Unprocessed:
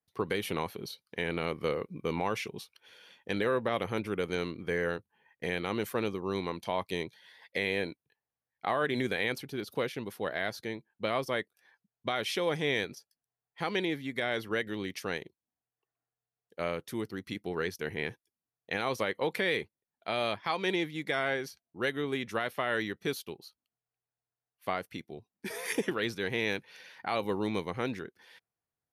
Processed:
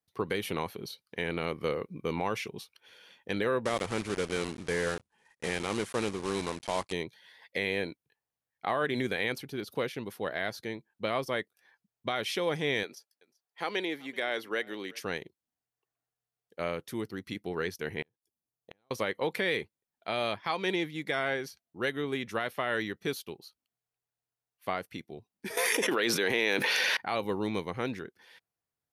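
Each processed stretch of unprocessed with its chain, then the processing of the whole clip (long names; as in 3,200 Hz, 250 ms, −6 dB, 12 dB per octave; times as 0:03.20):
0:03.65–0:06.94: one scale factor per block 3 bits + Butterworth low-pass 11,000 Hz 96 dB per octave
0:12.83–0:15.04: high-pass filter 320 Hz + single-tap delay 382 ms −24 dB
0:18.02–0:18.91: parametric band 2,200 Hz −10.5 dB 1.6 octaves + downward compressor 2.5 to 1, threshold −40 dBFS + gate with flip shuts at −33 dBFS, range −33 dB
0:25.57–0:26.97: high-pass filter 310 Hz + envelope flattener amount 100%
whole clip: no processing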